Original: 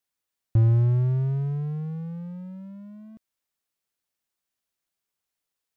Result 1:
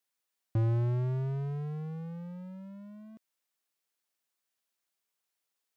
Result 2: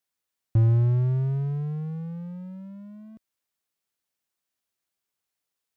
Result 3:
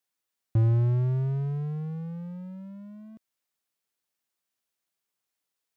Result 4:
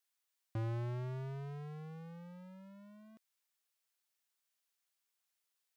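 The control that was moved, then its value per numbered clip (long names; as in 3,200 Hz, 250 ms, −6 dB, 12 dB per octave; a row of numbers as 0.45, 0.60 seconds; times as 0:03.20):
high-pass filter, corner frequency: 310, 46, 120, 1,100 Hertz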